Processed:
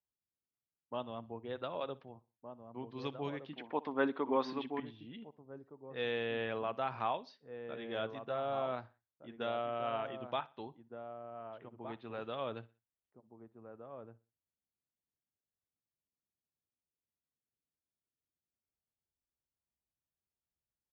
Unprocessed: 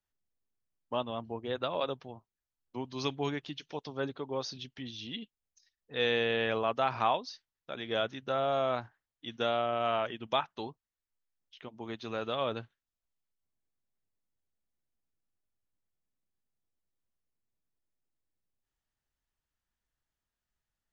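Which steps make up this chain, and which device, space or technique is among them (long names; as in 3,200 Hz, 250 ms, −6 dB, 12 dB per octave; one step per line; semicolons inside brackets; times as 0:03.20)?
high-pass filter 64 Hz
shout across a valley (high-frequency loss of the air 210 metres; slap from a distant wall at 260 metres, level −8 dB)
low-pass that shuts in the quiet parts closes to 830 Hz, open at −29.5 dBFS
0:03.53–0:04.80: octave-band graphic EQ 125/250/500/1,000/2,000/4,000 Hz −9/+12/+4/+11/+11/+4 dB
repeating echo 61 ms, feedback 35%, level −21.5 dB
level −6 dB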